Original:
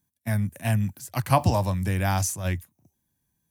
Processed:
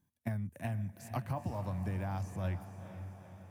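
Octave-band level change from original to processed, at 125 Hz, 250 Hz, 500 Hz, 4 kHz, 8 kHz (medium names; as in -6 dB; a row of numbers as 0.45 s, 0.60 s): -11.5 dB, -11.0 dB, -13.5 dB, -20.0 dB, -25.0 dB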